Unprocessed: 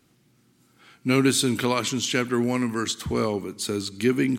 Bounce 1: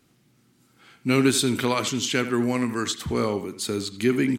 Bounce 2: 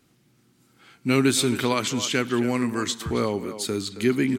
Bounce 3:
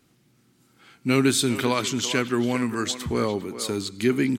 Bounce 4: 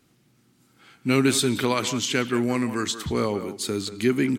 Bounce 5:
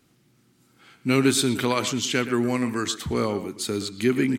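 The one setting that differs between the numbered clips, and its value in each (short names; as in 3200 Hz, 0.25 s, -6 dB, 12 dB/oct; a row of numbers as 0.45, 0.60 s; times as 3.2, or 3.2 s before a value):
speakerphone echo, time: 80, 270, 400, 180, 120 ms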